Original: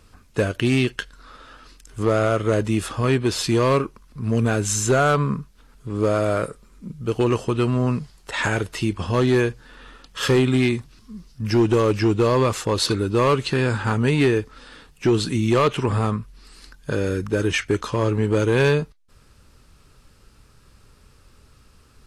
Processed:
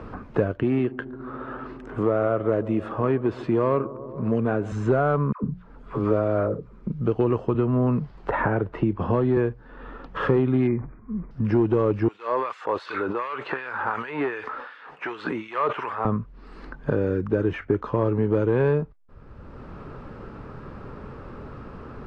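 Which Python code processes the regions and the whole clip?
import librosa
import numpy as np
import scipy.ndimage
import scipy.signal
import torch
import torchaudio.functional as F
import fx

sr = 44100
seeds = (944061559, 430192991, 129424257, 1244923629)

y = fx.chain(x, sr, fx.highpass(hz=230.0, slope=6),
    fx.peak_eq(hz=5200.0, db=-4.5, octaves=0.86),
    fx.echo_bbd(ms=141, stages=1024, feedback_pct=66, wet_db=-18.5), at=(0.63, 4.72))
y = fx.chain(y, sr, fx.hum_notches(base_hz=60, count=3),
    fx.dispersion(late='lows', ms=110.0, hz=720.0), at=(5.32, 6.87))
y = fx.chain(y, sr, fx.lowpass(hz=2500.0, slope=6),
    fx.band_squash(depth_pct=70), at=(7.54, 9.37))
y = fx.chain(y, sr, fx.brickwall_lowpass(high_hz=2500.0),
    fx.sustainer(db_per_s=120.0), at=(10.67, 11.31))
y = fx.chain(y, sr, fx.filter_lfo_highpass(shape='sine', hz=2.7, low_hz=620.0, high_hz=2700.0, q=0.71),
    fx.sustainer(db_per_s=44.0), at=(12.08, 16.05))
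y = scipy.signal.sosfilt(scipy.signal.butter(2, 1100.0, 'lowpass', fs=sr, output='sos'), y)
y = fx.low_shelf(y, sr, hz=140.0, db=-3.5)
y = fx.band_squash(y, sr, depth_pct=70)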